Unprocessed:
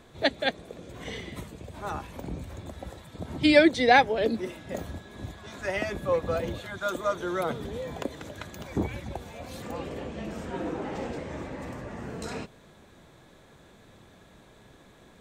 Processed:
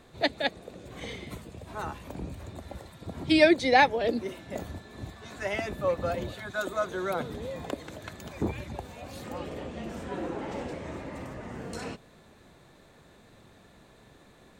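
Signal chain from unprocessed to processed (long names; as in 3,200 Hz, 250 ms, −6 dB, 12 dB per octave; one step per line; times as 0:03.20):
wrong playback speed 24 fps film run at 25 fps
level −1.5 dB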